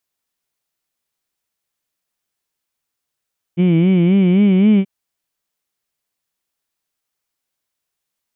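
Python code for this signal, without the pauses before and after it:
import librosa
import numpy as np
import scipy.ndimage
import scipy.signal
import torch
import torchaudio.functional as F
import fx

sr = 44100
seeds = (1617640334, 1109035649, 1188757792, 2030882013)

y = fx.vowel(sr, seeds[0], length_s=1.28, word='heed', hz=169.0, glide_st=3.5, vibrato_hz=3.8, vibrato_st=1.2)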